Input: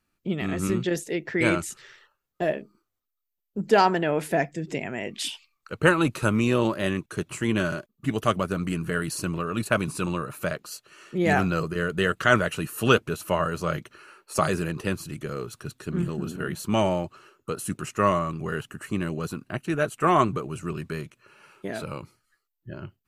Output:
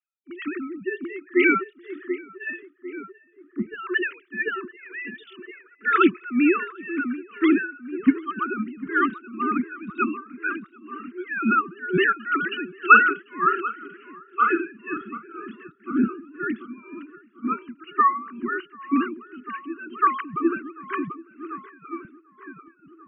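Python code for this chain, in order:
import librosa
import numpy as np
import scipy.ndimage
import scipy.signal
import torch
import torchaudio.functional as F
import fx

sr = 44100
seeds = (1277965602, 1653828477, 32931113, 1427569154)

y = fx.sine_speech(x, sr)
y = scipy.signal.sosfilt(scipy.signal.ellip(3, 1.0, 40, [360.0, 1200.0], 'bandstop', fs=sr, output='sos'), y)
y = fx.doubler(y, sr, ms=46.0, db=-7.5, at=(12.9, 15.43))
y = fx.echo_tape(y, sr, ms=742, feedback_pct=64, wet_db=-5.0, lp_hz=1500.0, drive_db=-2.0, wow_cents=23)
y = y * (1.0 - 0.84 / 2.0 + 0.84 / 2.0 * np.cos(2.0 * np.pi * 2.0 * (np.arange(len(y)) / sr)))
y = fx.band_widen(y, sr, depth_pct=40)
y = y * 10.0 ** (6.0 / 20.0)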